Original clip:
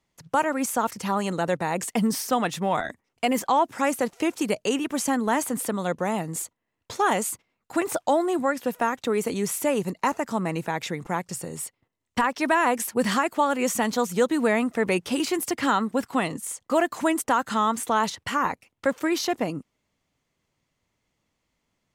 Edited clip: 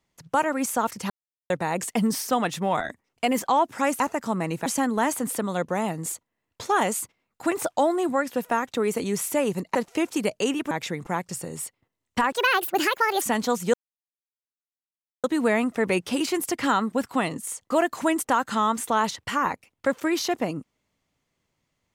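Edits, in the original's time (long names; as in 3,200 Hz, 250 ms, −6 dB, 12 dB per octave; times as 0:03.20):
0:01.10–0:01.50: silence
0:04.00–0:04.96: swap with 0:10.05–0:10.71
0:12.32–0:13.71: play speed 155%
0:14.23: splice in silence 1.50 s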